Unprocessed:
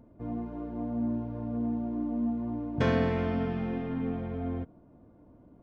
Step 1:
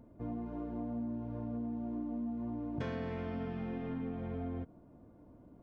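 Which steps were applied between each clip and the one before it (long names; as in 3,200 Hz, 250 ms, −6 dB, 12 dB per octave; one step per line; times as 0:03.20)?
downward compressor 6 to 1, threshold −34 dBFS, peak gain reduction 12 dB
level −1.5 dB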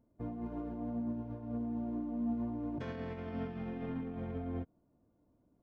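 brickwall limiter −35.5 dBFS, peak gain reduction 8 dB
expander for the loud parts 2.5 to 1, over −54 dBFS
level +7.5 dB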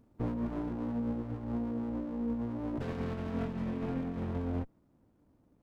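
speech leveller 0.5 s
windowed peak hold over 33 samples
level +4.5 dB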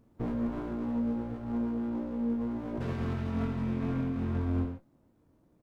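double-tracking delay 22 ms −8 dB
convolution reverb, pre-delay 3 ms, DRR 3 dB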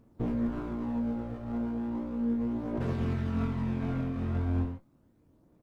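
phase shifter 0.36 Hz, delay 1.7 ms, feedback 27%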